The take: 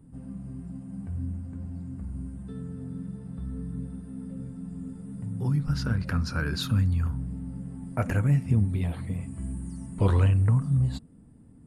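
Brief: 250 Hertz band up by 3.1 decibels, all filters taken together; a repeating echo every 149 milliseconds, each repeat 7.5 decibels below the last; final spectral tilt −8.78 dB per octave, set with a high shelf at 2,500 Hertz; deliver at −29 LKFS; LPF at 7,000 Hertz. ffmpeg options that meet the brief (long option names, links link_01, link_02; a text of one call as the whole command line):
ffmpeg -i in.wav -af "lowpass=7000,equalizer=frequency=250:width_type=o:gain=4.5,highshelf=frequency=2500:gain=-4,aecho=1:1:149|298|447|596|745:0.422|0.177|0.0744|0.0312|0.0131,volume=-1.5dB" out.wav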